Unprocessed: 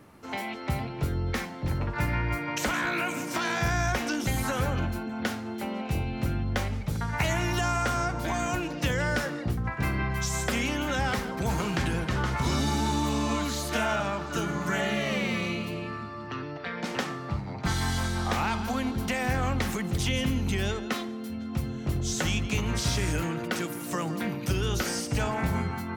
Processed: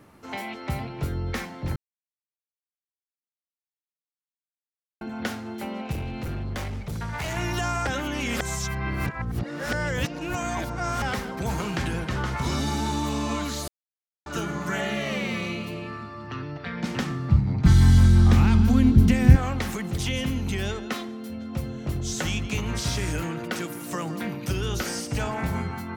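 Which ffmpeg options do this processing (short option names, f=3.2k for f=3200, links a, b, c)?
-filter_complex "[0:a]asettb=1/sr,asplit=3[a][b][c];[a]atrim=end=5.924[d];[b]atrim=start=5.92:end=7.37,asetpts=PTS-STARTPTS,afade=t=in:d=0.004:c=qsin,afade=t=out:st=1.446:d=0.004:c=qsin,asoftclip=type=hard:threshold=-27.5dB[e];[c]atrim=start=7.366[f];[d][e]acrossfade=d=0.004:c1=hsin:c2=qsin[g];[g][f]acrossfade=d=0.004:c1=qsin:c2=hsin,asettb=1/sr,asplit=3[h][i][j];[h]atrim=end=16.104[k];[i]atrim=start=16.1:end=19.36,asetpts=PTS-STARTPTS,afade=t=in:d=0.004:c=qsin,afade=t=out:st=3.256:d=0.004:c=qsin,asubboost=boost=12:cutoff=240[l];[j]atrim=start=19.356[m];[k][l]acrossfade=d=0.004:c1=hsin:c2=qsin[n];[n][m]acrossfade=d=0.004:c1=qsin:c2=hsin,asettb=1/sr,asplit=3[o][p][q];[o]atrim=end=21.254[r];[p]atrim=start=21.25:end=21.87,asetpts=PTS-STARTPTS,afade=t=in:d=0.004:c=qsin,afade=t=out:st=0.616:d=0.004:c=qsin,equalizer=f=550:w=6.3:g=9[s];[q]atrim=start=21.866[t];[r][s]acrossfade=d=0.004:c1=hsin:c2=qsin[u];[u][t]acrossfade=d=0.004:c1=qsin:c2=hsin,asplit=7[v][w][x][y][z][aa][ab];[v]atrim=end=1.76,asetpts=PTS-STARTPTS,afade=t=out:st=1.756:d=0.004:c=hsin[ac];[w]atrim=start=1.76:end=5.01,asetpts=PTS-STARTPTS,volume=0[ad];[x]atrim=start=5.01:end=7.872,asetpts=PTS-STARTPTS,afade=t=in:d=0.004:c=hsin[ae];[y]atrim=start=7.868:end=11.022,asetpts=PTS-STARTPTS,areverse[af];[z]atrim=start=11.018:end=13.68,asetpts=PTS-STARTPTS,afade=t=out:st=2.658:d=0.004:c=hsin[ag];[aa]atrim=start=13.68:end=14.26,asetpts=PTS-STARTPTS,volume=0[ah];[ab]atrim=start=14.26,asetpts=PTS-STARTPTS,afade=t=in:d=0.004:c=hsin[ai];[ac][ad][ae]concat=n=3:v=0:a=1[aj];[aj][af]acrossfade=d=0.004:c1=hsin:c2=hsin[ak];[ag][ah][ai]concat=n=3:v=0:a=1[al];[ak][al]acrossfade=d=0.004:c1=hsin:c2=hsin"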